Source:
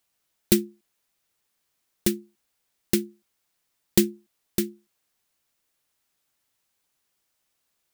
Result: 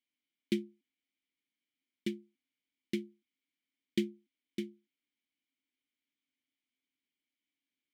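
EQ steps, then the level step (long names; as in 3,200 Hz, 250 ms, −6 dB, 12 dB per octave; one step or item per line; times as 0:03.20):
formant filter i
+1.5 dB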